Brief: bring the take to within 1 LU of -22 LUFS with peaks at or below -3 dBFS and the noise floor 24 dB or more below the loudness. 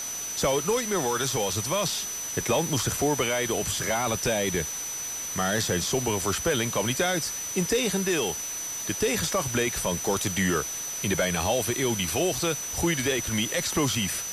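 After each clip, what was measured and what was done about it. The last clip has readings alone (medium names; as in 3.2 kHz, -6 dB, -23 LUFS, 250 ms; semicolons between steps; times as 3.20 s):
steady tone 6 kHz; tone level -32 dBFS; noise floor -34 dBFS; noise floor target -50 dBFS; loudness -26.0 LUFS; peak level -13.0 dBFS; loudness target -22.0 LUFS
-> band-stop 6 kHz, Q 30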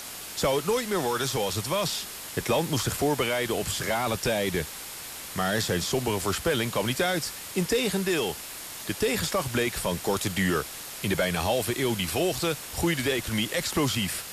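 steady tone not found; noise floor -39 dBFS; noise floor target -52 dBFS
-> noise reduction 13 dB, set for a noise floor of -39 dBFS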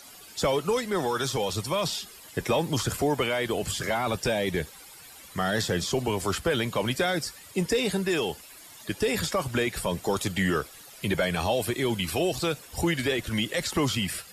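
noise floor -48 dBFS; noise floor target -52 dBFS
-> noise reduction 6 dB, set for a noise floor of -48 dBFS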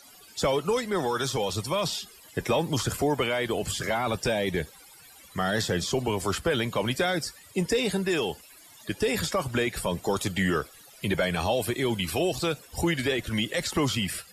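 noise floor -52 dBFS; loudness -27.5 LUFS; peak level -14.0 dBFS; loudness target -22.0 LUFS
-> trim +5.5 dB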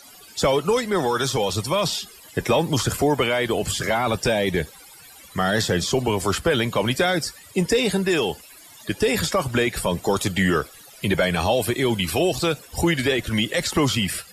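loudness -22.0 LUFS; peak level -8.5 dBFS; noise floor -46 dBFS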